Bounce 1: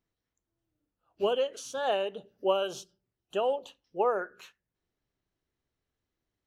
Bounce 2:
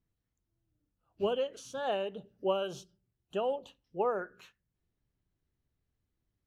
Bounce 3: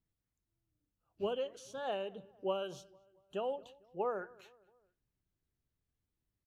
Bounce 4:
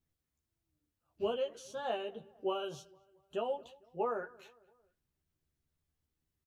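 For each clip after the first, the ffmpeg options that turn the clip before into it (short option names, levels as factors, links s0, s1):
-af "bass=f=250:g=11,treble=f=4000:g=-3,volume=0.596"
-filter_complex "[0:a]asplit=2[s0][s1];[s1]adelay=226,lowpass=f=2000:p=1,volume=0.0708,asplit=2[s2][s3];[s3]adelay=226,lowpass=f=2000:p=1,volume=0.5,asplit=2[s4][s5];[s5]adelay=226,lowpass=f=2000:p=1,volume=0.5[s6];[s0][s2][s4][s6]amix=inputs=4:normalize=0,volume=0.562"
-filter_complex "[0:a]asplit=2[s0][s1];[s1]adelay=13,volume=0.708[s2];[s0][s2]amix=inputs=2:normalize=0"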